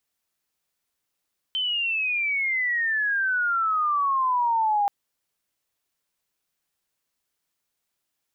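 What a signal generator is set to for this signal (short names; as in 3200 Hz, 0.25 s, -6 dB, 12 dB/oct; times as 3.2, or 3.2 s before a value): chirp logarithmic 3100 Hz -> 800 Hz -23 dBFS -> -19 dBFS 3.33 s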